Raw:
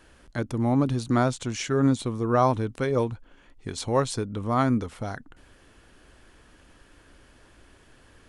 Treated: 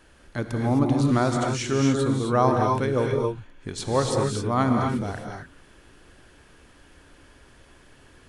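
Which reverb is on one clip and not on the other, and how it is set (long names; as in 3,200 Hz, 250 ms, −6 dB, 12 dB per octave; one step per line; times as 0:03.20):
reverb whose tail is shaped and stops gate 290 ms rising, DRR 1 dB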